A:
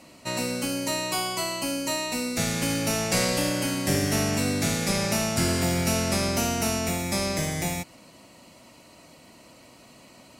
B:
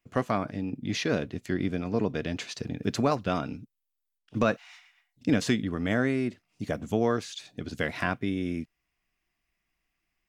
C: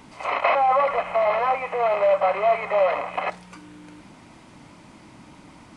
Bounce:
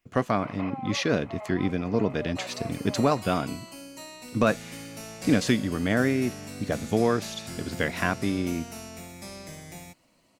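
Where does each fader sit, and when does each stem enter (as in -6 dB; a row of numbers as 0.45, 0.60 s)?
-14.5, +2.5, -19.5 dB; 2.10, 0.00, 0.15 s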